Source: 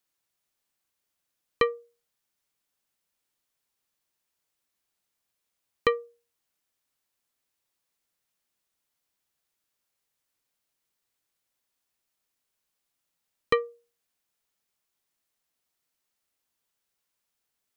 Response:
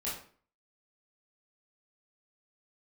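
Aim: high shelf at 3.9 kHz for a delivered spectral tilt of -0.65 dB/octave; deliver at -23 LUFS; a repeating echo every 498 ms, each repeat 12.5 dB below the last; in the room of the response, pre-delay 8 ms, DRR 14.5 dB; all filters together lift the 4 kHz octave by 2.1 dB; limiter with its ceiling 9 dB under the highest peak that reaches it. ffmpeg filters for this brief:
-filter_complex "[0:a]highshelf=f=3900:g=-9,equalizer=f=4000:t=o:g=8,alimiter=limit=0.141:level=0:latency=1,aecho=1:1:498|996|1494:0.237|0.0569|0.0137,asplit=2[s0][s1];[1:a]atrim=start_sample=2205,adelay=8[s2];[s1][s2]afir=irnorm=-1:irlink=0,volume=0.133[s3];[s0][s3]amix=inputs=2:normalize=0,volume=4.47"

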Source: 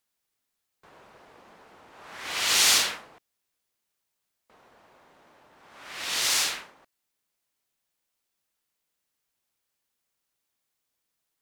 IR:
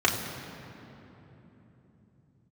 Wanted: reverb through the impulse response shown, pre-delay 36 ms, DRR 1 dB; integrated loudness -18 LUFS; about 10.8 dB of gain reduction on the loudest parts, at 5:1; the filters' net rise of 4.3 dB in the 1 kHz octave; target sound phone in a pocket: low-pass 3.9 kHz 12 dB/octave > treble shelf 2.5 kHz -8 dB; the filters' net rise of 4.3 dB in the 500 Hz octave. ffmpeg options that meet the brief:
-filter_complex "[0:a]equalizer=f=500:t=o:g=4,equalizer=f=1000:t=o:g=6,acompressor=threshold=0.0398:ratio=5,asplit=2[s0][s1];[1:a]atrim=start_sample=2205,adelay=36[s2];[s1][s2]afir=irnorm=-1:irlink=0,volume=0.158[s3];[s0][s3]amix=inputs=2:normalize=0,lowpass=3900,highshelf=f=2500:g=-8,volume=8.91"

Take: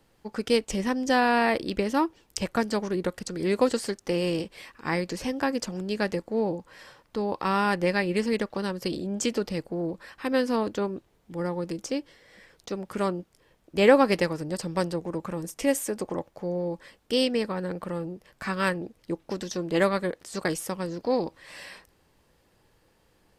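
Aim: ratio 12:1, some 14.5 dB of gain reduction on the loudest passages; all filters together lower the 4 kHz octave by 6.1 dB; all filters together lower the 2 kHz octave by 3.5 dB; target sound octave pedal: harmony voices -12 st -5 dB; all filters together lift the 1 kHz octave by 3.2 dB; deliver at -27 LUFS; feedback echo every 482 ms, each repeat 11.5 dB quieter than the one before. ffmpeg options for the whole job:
-filter_complex "[0:a]equalizer=f=1000:t=o:g=5.5,equalizer=f=2000:t=o:g=-5,equalizer=f=4000:t=o:g=-7,acompressor=threshold=0.0501:ratio=12,aecho=1:1:482|964|1446:0.266|0.0718|0.0194,asplit=2[s0][s1];[s1]asetrate=22050,aresample=44100,atempo=2,volume=0.562[s2];[s0][s2]amix=inputs=2:normalize=0,volume=1.68"

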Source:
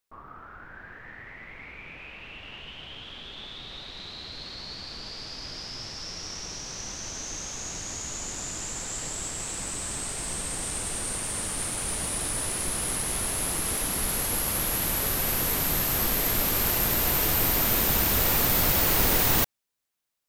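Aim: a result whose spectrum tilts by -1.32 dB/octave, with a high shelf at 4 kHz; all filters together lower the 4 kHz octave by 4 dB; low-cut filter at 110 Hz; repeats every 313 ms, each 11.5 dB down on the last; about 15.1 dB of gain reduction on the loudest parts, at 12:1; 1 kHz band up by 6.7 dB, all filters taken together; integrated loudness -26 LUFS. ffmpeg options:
-af "highpass=110,equalizer=f=1000:t=o:g=8.5,highshelf=f=4000:g=4,equalizer=f=4000:t=o:g=-8.5,acompressor=threshold=0.0251:ratio=12,aecho=1:1:313|626|939:0.266|0.0718|0.0194,volume=2.51"

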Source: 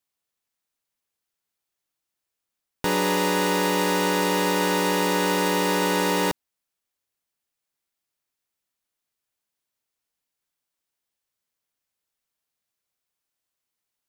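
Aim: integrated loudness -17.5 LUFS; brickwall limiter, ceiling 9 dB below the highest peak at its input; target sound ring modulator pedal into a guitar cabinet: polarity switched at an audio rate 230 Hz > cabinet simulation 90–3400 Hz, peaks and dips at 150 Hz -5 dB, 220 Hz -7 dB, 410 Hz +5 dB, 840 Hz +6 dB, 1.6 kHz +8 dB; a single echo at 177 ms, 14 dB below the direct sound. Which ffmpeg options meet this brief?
-af "alimiter=limit=0.106:level=0:latency=1,aecho=1:1:177:0.2,aeval=exprs='val(0)*sgn(sin(2*PI*230*n/s))':c=same,highpass=90,equalizer=f=150:t=q:w=4:g=-5,equalizer=f=220:t=q:w=4:g=-7,equalizer=f=410:t=q:w=4:g=5,equalizer=f=840:t=q:w=4:g=6,equalizer=f=1600:t=q:w=4:g=8,lowpass=f=3400:w=0.5412,lowpass=f=3400:w=1.3066,volume=2.51"

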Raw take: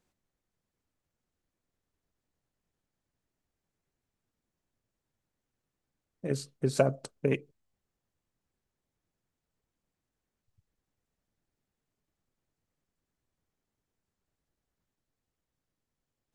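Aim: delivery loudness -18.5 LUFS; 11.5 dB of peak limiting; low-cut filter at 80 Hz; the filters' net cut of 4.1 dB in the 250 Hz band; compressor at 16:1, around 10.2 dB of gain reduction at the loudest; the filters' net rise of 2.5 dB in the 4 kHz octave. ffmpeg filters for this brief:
-af "highpass=80,equalizer=f=250:t=o:g=-5.5,equalizer=f=4000:t=o:g=3,acompressor=threshold=0.0355:ratio=16,volume=14.1,alimiter=limit=0.631:level=0:latency=1"

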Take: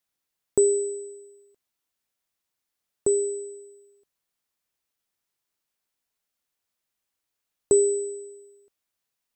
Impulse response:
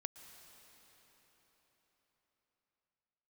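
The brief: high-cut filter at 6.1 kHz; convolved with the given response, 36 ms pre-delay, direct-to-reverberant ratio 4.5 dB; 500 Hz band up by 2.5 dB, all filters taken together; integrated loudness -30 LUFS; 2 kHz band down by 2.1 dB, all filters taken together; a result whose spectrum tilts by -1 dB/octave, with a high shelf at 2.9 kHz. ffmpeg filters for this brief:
-filter_complex "[0:a]lowpass=6100,equalizer=f=500:t=o:g=3.5,equalizer=f=2000:t=o:g=-5.5,highshelf=f=2900:g=7,asplit=2[s0][s1];[1:a]atrim=start_sample=2205,adelay=36[s2];[s1][s2]afir=irnorm=-1:irlink=0,volume=0.841[s3];[s0][s3]amix=inputs=2:normalize=0,volume=0.708"

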